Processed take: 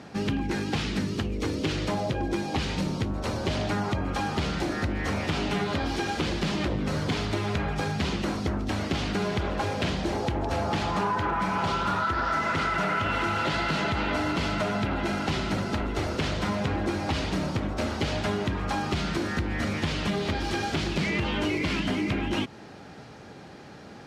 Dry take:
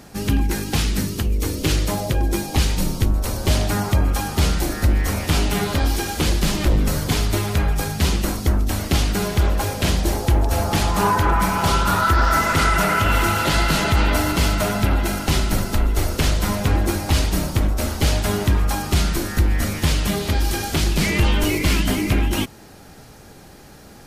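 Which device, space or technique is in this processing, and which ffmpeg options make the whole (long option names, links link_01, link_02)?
AM radio: -af "highpass=110,lowpass=4000,acompressor=threshold=-23dB:ratio=6,asoftclip=type=tanh:threshold=-16dB"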